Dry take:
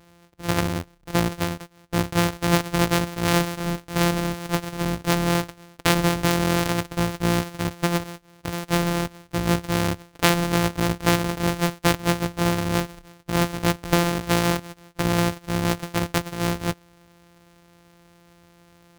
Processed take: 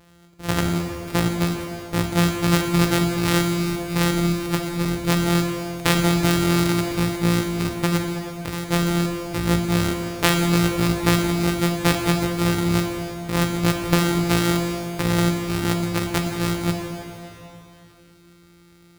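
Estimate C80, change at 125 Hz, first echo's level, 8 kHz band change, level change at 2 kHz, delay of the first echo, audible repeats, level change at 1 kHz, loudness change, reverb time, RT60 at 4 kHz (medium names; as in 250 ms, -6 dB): 5.0 dB, +3.0 dB, no echo, +1.5 dB, +1.0 dB, no echo, no echo, -0.5 dB, +2.0 dB, 3.0 s, 2.8 s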